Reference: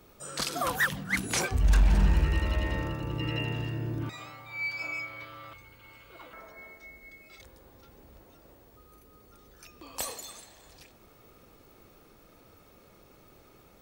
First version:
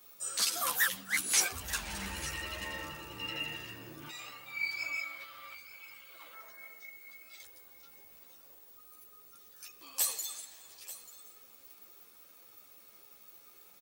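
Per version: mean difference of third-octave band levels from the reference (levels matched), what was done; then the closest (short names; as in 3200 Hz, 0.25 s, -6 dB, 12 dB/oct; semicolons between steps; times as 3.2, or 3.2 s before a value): 8.0 dB: tilt +4 dB/oct; echo 0.888 s -16 dB; ensemble effect; gain -3.5 dB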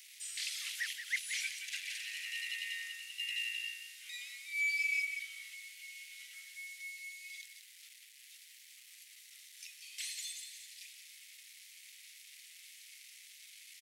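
22.5 dB: delta modulation 64 kbps, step -44.5 dBFS; Chebyshev high-pass 2000 Hz, order 5; on a send: echo 0.179 s -9 dB; on the sum: gain +2 dB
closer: first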